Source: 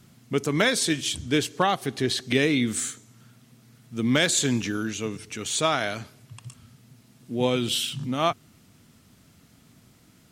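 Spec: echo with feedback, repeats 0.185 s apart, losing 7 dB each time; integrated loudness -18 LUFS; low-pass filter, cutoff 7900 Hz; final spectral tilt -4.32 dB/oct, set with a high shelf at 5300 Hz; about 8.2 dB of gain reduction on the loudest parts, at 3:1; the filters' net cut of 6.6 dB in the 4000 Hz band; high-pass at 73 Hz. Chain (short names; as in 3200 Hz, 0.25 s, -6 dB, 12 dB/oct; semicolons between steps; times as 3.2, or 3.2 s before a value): HPF 73 Hz; LPF 7900 Hz; bell 4000 Hz -6.5 dB; high shelf 5300 Hz -4.5 dB; compressor 3:1, threshold -29 dBFS; feedback echo 0.185 s, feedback 45%, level -7 dB; gain +14.5 dB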